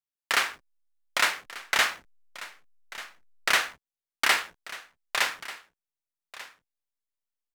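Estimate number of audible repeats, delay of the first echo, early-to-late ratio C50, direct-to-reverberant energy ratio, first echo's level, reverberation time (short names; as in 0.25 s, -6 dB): 1, 1.19 s, none, none, -17.0 dB, none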